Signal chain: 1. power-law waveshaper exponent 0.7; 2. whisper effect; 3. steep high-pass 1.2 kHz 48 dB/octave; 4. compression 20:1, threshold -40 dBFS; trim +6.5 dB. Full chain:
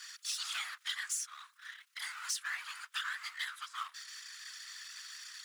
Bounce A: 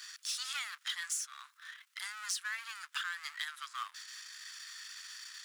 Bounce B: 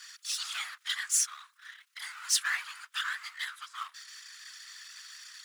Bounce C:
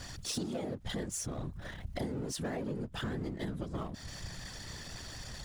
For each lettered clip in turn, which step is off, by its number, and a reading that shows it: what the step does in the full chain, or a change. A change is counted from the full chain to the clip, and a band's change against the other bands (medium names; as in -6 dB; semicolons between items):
2, crest factor change +3.0 dB; 4, mean gain reduction 1.5 dB; 3, 2 kHz band -5.0 dB